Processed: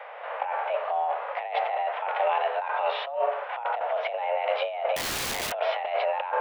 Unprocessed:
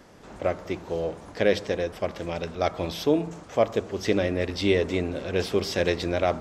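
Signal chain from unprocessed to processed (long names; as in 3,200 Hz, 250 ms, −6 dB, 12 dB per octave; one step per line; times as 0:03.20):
single-sideband voice off tune +260 Hz 270–2,700 Hz
compressor whose output falls as the input rises −34 dBFS, ratio −1
harmonic and percussive parts rebalanced harmonic +9 dB
0:04.96–0:05.52: wrap-around overflow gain 25.5 dB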